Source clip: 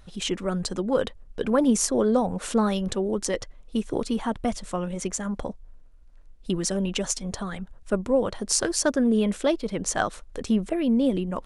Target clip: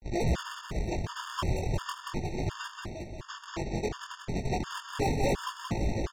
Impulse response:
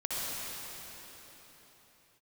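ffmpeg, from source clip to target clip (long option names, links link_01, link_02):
-filter_complex "[0:a]areverse,lowpass=2300,bandreject=frequency=145.4:width_type=h:width=4,bandreject=frequency=290.8:width_type=h:width=4,bandreject=frequency=436.2:width_type=h:width=4,bandreject=frequency=581.6:width_type=h:width=4,bandreject=frequency=727:width_type=h:width=4,aresample=8000,acrusher=samples=34:mix=1:aa=0.000001:lfo=1:lforange=54.4:lforate=2.2,aresample=44100,asetrate=82467,aresample=44100,volume=21dB,asoftclip=hard,volume=-21dB,flanger=delay=17:depth=7.6:speed=0.36,aecho=1:1:180|360|540|720|900|1080|1260:0.631|0.341|0.184|0.0994|0.0537|0.029|0.0156,asplit=2[link_01][link_02];[1:a]atrim=start_sample=2205,asetrate=23814,aresample=44100[link_03];[link_02][link_03]afir=irnorm=-1:irlink=0,volume=-26.5dB[link_04];[link_01][link_04]amix=inputs=2:normalize=0,afftfilt=real='re*gt(sin(2*PI*1.4*pts/sr)*(1-2*mod(floor(b*sr/1024/910),2)),0)':imag='im*gt(sin(2*PI*1.4*pts/sr)*(1-2*mod(floor(b*sr/1024/910),2)),0)':win_size=1024:overlap=0.75"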